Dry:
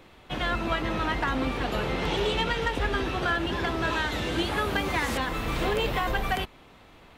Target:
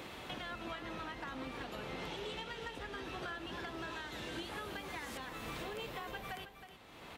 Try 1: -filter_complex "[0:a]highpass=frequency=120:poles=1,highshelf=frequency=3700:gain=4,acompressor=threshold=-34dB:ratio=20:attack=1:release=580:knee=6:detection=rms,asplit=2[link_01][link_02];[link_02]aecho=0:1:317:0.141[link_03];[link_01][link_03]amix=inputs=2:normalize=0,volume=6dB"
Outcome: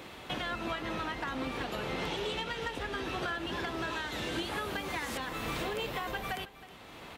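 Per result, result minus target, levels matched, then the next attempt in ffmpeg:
downward compressor: peak gain reduction −8 dB; echo-to-direct −6.5 dB
-filter_complex "[0:a]highpass=frequency=120:poles=1,highshelf=frequency=3700:gain=4,acompressor=threshold=-42.5dB:ratio=20:attack=1:release=580:knee=6:detection=rms,asplit=2[link_01][link_02];[link_02]aecho=0:1:317:0.141[link_03];[link_01][link_03]amix=inputs=2:normalize=0,volume=6dB"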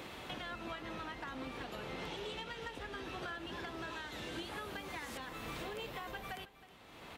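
echo-to-direct −6.5 dB
-filter_complex "[0:a]highpass=frequency=120:poles=1,highshelf=frequency=3700:gain=4,acompressor=threshold=-42.5dB:ratio=20:attack=1:release=580:knee=6:detection=rms,asplit=2[link_01][link_02];[link_02]aecho=0:1:317:0.299[link_03];[link_01][link_03]amix=inputs=2:normalize=0,volume=6dB"

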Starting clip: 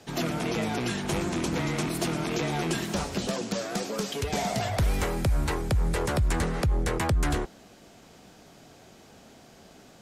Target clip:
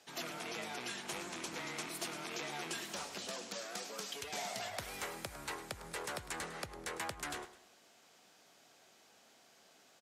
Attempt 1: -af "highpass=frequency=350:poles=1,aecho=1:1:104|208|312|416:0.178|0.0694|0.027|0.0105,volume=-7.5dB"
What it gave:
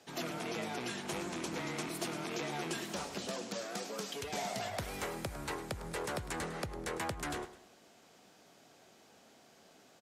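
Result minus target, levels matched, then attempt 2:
250 Hz band +5.5 dB
-af "highpass=frequency=1100:poles=1,aecho=1:1:104|208|312|416:0.178|0.0694|0.027|0.0105,volume=-7.5dB"

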